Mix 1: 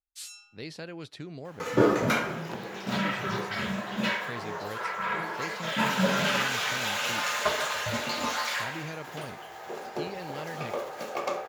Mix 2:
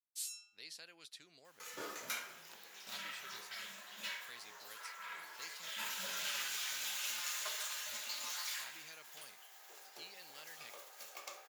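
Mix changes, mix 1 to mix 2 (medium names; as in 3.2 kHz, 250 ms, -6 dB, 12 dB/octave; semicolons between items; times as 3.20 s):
second sound -3.5 dB; master: add differentiator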